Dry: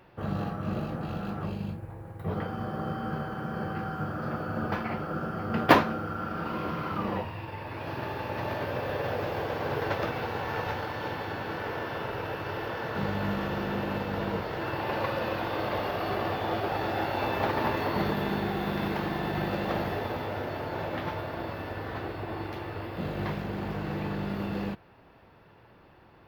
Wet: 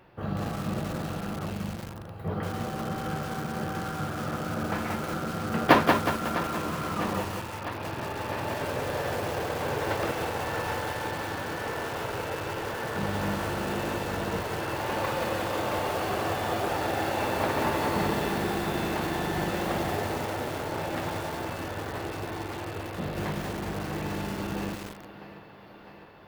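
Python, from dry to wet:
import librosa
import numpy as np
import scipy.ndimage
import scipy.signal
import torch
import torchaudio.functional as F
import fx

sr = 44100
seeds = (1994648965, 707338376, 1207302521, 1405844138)

y = fx.echo_thinned(x, sr, ms=653, feedback_pct=74, hz=180.0, wet_db=-13.0)
y = fx.echo_crushed(y, sr, ms=183, feedback_pct=55, bits=6, wet_db=-3.5)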